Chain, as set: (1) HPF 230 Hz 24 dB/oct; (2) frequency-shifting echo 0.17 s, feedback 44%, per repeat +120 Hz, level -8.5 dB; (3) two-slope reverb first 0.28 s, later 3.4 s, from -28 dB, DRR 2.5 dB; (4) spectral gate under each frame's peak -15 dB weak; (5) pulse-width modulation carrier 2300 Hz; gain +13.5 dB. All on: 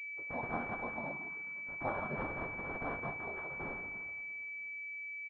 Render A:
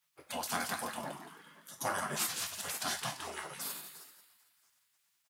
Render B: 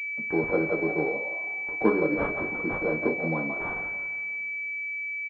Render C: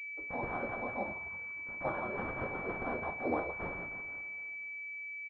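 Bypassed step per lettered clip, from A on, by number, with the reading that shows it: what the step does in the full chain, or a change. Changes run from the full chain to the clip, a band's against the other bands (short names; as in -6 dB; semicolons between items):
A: 5, 1 kHz band +4.5 dB; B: 4, 1 kHz band -7.5 dB; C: 1, 500 Hz band +3.0 dB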